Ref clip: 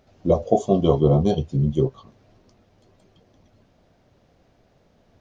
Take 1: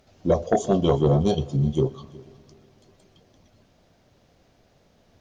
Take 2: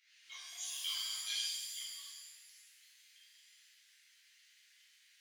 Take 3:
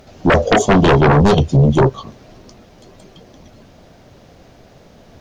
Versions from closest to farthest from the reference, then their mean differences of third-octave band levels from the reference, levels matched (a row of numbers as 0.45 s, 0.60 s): 1, 3, 2; 3.5 dB, 7.5 dB, 29.0 dB